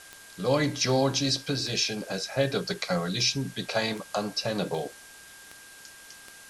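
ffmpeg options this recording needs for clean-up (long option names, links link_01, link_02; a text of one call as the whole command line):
ffmpeg -i in.wav -af "adeclick=threshold=4,bandreject=frequency=1600:width=30,afwtdn=0.004" out.wav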